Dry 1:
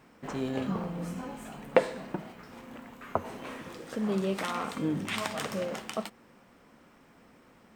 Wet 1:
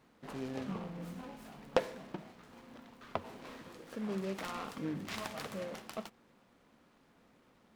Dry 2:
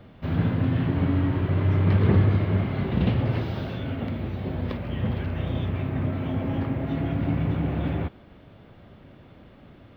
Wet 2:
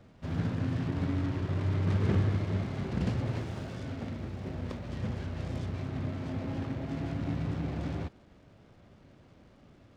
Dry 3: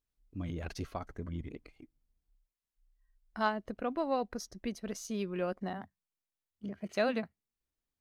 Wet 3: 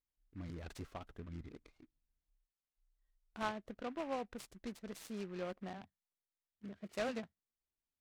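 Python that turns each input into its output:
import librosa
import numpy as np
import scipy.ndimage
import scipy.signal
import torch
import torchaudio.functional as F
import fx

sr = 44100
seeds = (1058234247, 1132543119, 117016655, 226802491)

y = fx.noise_mod_delay(x, sr, seeds[0], noise_hz=1500.0, depth_ms=0.053)
y = y * 10.0 ** (-8.0 / 20.0)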